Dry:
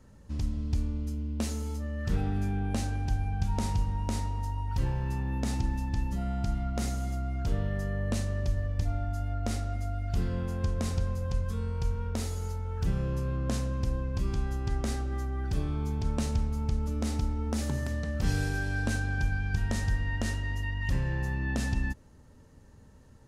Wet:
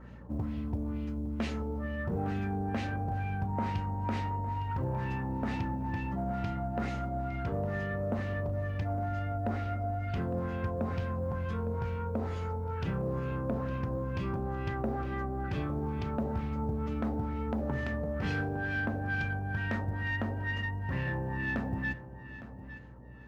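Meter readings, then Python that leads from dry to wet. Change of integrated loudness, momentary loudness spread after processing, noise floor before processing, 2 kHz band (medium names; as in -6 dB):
-2.0 dB, 3 LU, -54 dBFS, +2.0 dB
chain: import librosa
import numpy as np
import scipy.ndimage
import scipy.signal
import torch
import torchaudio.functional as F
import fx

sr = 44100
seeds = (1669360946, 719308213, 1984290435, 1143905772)

p1 = scipy.signal.sosfilt(scipy.signal.butter(4, 70.0, 'highpass', fs=sr, output='sos'), x)
p2 = fx.low_shelf(p1, sr, hz=100.0, db=-10.0)
p3 = fx.rider(p2, sr, range_db=10, speed_s=0.5)
p4 = p2 + (p3 * librosa.db_to_amplitude(0.0))
p5 = fx.filter_lfo_lowpass(p4, sr, shape='sine', hz=2.2, low_hz=630.0, high_hz=2800.0, q=1.7)
p6 = fx.add_hum(p5, sr, base_hz=60, snr_db=18)
p7 = 10.0 ** (-20.0 / 20.0) * np.tanh(p6 / 10.0 ** (-20.0 / 20.0))
p8 = fx.quant_float(p7, sr, bits=6)
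p9 = p8 + fx.echo_feedback(p8, sr, ms=859, feedback_pct=32, wet_db=-14.0, dry=0)
y = p9 * librosa.db_to_amplitude(-3.5)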